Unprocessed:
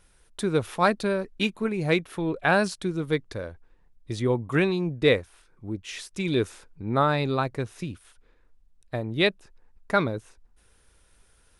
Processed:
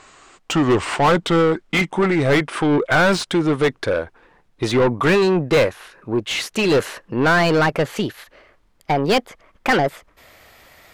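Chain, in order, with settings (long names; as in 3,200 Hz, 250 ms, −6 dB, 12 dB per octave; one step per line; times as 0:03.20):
gliding playback speed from 76% → 136%
mid-hump overdrive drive 29 dB, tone 2,000 Hz, clips at −7 dBFS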